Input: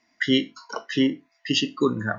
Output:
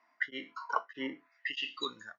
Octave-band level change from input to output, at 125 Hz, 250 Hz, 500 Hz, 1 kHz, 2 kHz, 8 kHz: −31.5 dB, −21.5 dB, −18.0 dB, −3.0 dB, −7.5 dB, can't be measured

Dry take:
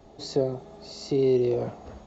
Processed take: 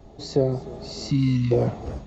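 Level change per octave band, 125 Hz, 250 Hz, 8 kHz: +11.0 dB, +4.5 dB, can't be measured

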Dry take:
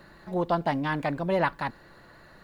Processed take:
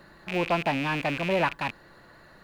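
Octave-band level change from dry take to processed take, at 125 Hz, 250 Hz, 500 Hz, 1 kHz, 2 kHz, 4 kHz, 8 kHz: −0.5 dB, −0.5 dB, 0.0 dB, 0.0 dB, +4.0 dB, +7.5 dB, can't be measured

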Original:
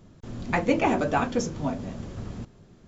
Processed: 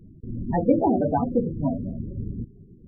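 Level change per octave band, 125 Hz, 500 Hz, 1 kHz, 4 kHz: +4.5 dB, +2.5 dB, 0.0 dB, below −40 dB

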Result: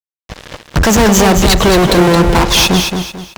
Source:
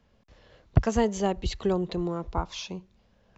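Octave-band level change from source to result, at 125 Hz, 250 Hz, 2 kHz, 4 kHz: +15.5, +18.5, +26.0, +26.5 decibels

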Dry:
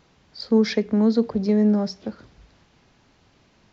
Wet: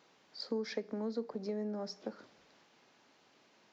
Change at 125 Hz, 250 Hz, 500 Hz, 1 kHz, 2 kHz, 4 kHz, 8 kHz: below −20 dB, −21.0 dB, −15.0 dB, −13.0 dB, −14.5 dB, −12.0 dB, can't be measured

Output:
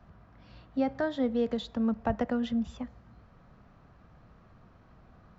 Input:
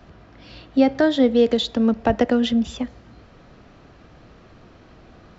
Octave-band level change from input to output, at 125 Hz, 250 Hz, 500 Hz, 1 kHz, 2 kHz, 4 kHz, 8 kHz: −7.5 dB, −11.0 dB, −12.5 dB, −9.5 dB, −11.5 dB, −17.0 dB, can't be measured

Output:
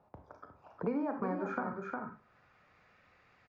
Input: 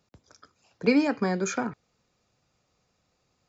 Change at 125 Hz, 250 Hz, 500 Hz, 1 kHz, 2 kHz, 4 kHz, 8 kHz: −8.5 dB, −10.5 dB, −9.0 dB, −4.0 dB, −10.5 dB, below −25 dB, can't be measured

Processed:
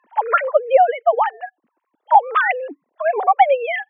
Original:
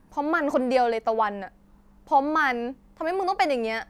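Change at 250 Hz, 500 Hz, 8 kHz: below −15 dB, +7.0 dB, can't be measured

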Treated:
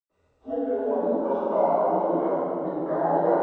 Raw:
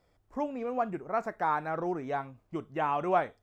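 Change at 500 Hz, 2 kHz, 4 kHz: +10.5 dB, −4.5 dB, can't be measured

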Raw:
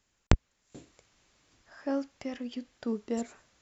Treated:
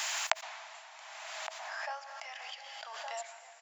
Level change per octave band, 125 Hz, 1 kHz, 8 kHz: below −40 dB, +4.5 dB, can't be measured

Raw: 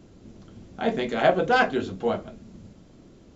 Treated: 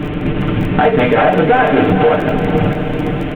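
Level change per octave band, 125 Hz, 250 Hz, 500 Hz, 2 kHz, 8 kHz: +22.0 dB, +16.5 dB, +12.5 dB, +10.0 dB, can't be measured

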